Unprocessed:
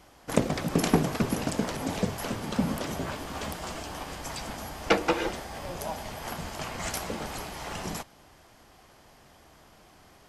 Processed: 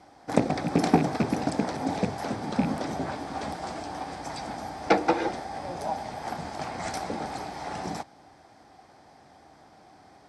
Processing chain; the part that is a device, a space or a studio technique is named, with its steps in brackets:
car door speaker with a rattle (loose part that buzzes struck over −25 dBFS, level −21 dBFS; loudspeaker in its box 86–8,400 Hz, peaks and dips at 290 Hz +5 dB, 780 Hz +9 dB, 1,100 Hz −3 dB, 2,900 Hz −10 dB, 6,900 Hz −8 dB)

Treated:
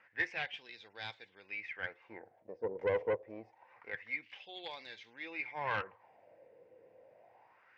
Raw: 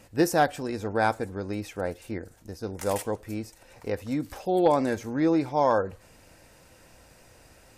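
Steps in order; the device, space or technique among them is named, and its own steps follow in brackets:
wah-wah guitar rig (LFO wah 0.26 Hz 470–3,900 Hz, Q 5.1; tube saturation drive 33 dB, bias 0.55; loudspeaker in its box 97–4,500 Hz, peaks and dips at 110 Hz +6 dB, 270 Hz −5 dB, 620 Hz −3 dB, 1,300 Hz −7 dB, 2,100 Hz +8 dB, 4,100 Hz −6 dB)
level +7.5 dB

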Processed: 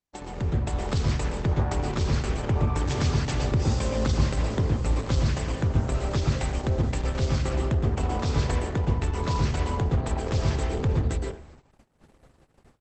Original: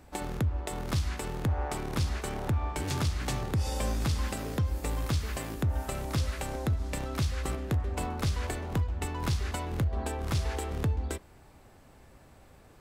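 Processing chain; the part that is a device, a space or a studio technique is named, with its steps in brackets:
speakerphone in a meeting room (convolution reverb RT60 0.45 s, pre-delay 113 ms, DRR 1 dB; far-end echo of a speakerphone 90 ms, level −20 dB; automatic gain control gain up to 6 dB; noise gate −43 dBFS, range −38 dB; level −3 dB; Opus 12 kbit/s 48,000 Hz)

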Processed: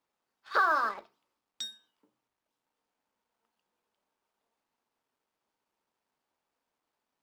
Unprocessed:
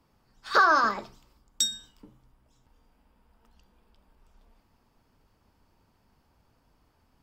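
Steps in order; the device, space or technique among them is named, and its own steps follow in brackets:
phone line with mismatched companding (band-pass filter 380–3,500 Hz; mu-law and A-law mismatch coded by A)
level −5 dB

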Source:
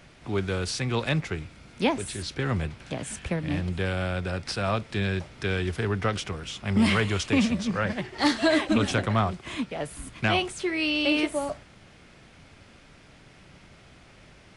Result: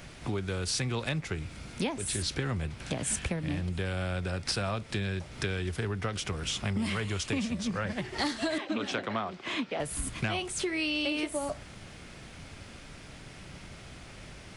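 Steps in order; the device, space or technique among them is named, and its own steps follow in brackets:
0:08.58–0:09.80: three-way crossover with the lows and the highs turned down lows −21 dB, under 200 Hz, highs −22 dB, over 5,600 Hz
ASMR close-microphone chain (low-shelf EQ 130 Hz +4 dB; downward compressor 6 to 1, threshold −33 dBFS, peak gain reduction 15.5 dB; high-shelf EQ 6,300 Hz +8 dB)
level +3.5 dB

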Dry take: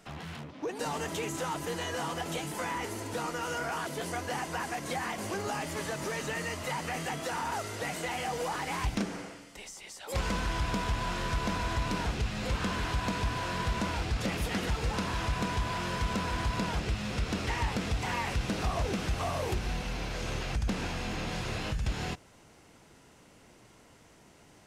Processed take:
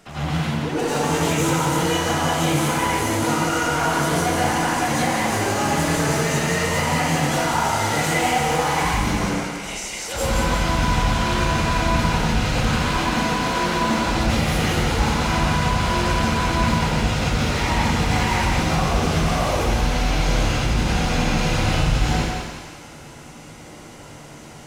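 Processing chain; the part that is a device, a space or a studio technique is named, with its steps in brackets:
limiter into clipper (brickwall limiter −28 dBFS, peak gain reduction 5.5 dB; hard clipping −33 dBFS, distortion −15 dB)
0:12.84–0:13.98: low shelf with overshoot 150 Hz −9.5 dB, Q 1.5
echo with a time of its own for lows and highs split 780 Hz, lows 93 ms, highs 175 ms, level −5 dB
dense smooth reverb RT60 0.79 s, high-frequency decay 0.8×, pre-delay 75 ms, DRR −9 dB
level +5.5 dB

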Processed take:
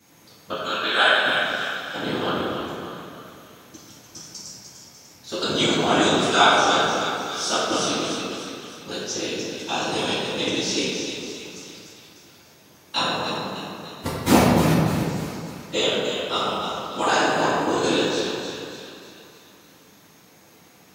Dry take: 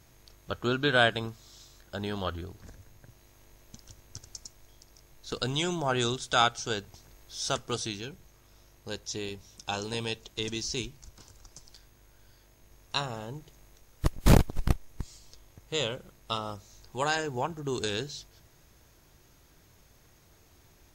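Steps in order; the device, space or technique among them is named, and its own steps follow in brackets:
0:00.58–0:01.26: high-pass filter 840 Hz 12 dB per octave
echo with a time of its own for lows and highs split 1,100 Hz, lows 227 ms, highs 298 ms, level −7 dB
whispering ghost (random phases in short frames; high-pass filter 200 Hz 12 dB per octave; convolution reverb RT60 1.7 s, pre-delay 3 ms, DRR −9.5 dB)

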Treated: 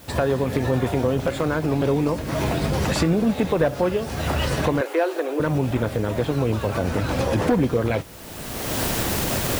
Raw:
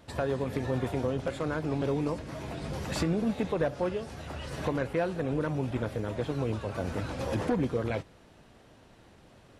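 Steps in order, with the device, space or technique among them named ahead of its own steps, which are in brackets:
cheap recorder with automatic gain (white noise bed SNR 27 dB; camcorder AGC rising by 27 dB per second)
0:04.81–0:05.40: elliptic high-pass filter 310 Hz, stop band 40 dB
level +8.5 dB

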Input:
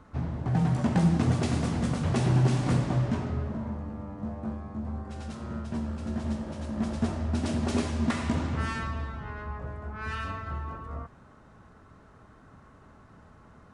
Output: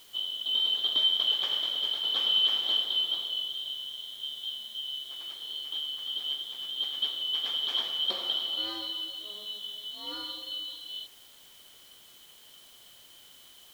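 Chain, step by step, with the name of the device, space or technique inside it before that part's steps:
split-band scrambled radio (band-splitting scrambler in four parts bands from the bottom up 2413; band-pass filter 360–3,100 Hz; white noise bed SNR 24 dB)

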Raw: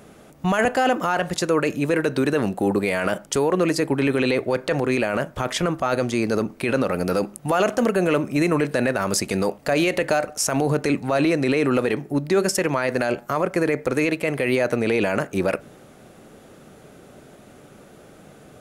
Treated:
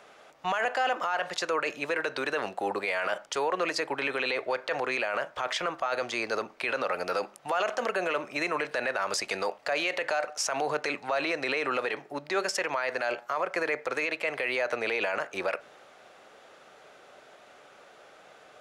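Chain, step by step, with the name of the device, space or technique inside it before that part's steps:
DJ mixer with the lows and highs turned down (three-way crossover with the lows and the highs turned down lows −24 dB, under 540 Hz, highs −18 dB, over 6,100 Hz; brickwall limiter −19 dBFS, peak gain reduction 10 dB)

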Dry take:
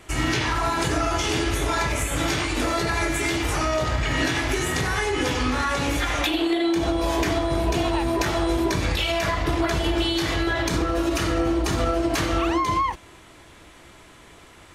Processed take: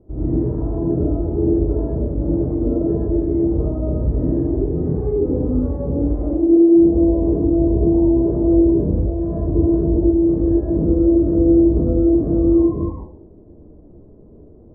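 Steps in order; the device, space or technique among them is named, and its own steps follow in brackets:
next room (low-pass filter 500 Hz 24 dB per octave; convolution reverb RT60 0.40 s, pre-delay 77 ms, DRR −5.5 dB)

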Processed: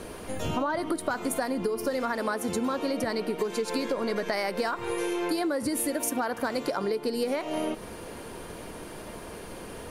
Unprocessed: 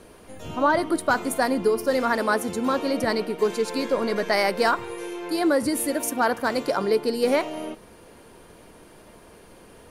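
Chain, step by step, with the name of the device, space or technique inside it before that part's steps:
serial compression, leveller first (downward compressor 2.5 to 1, threshold −25 dBFS, peak gain reduction 6.5 dB; downward compressor 6 to 1, threshold −34 dBFS, peak gain reduction 12 dB)
level +8 dB

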